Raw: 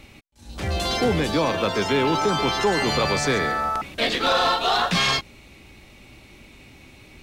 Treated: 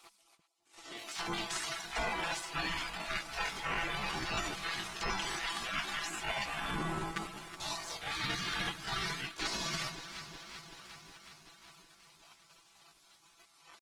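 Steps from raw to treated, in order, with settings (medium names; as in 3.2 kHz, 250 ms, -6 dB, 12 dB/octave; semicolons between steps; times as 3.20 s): reverb removal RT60 0.96 s; spectral gate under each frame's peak -25 dB weak; wide varispeed 0.747×; peaking EQ 510 Hz -11.5 dB 0.29 oct; comb 6 ms, depth 51%; echo whose repeats swap between lows and highs 130 ms, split 820 Hz, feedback 85%, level -13.5 dB; reverse; compression 8:1, threshold -39 dBFS, peak gain reduction 9.5 dB; reverse; treble shelf 2.2 kHz -7.5 dB; waveshaping leveller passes 1; tempo 0.7×; trim +7 dB; Opus 24 kbps 48 kHz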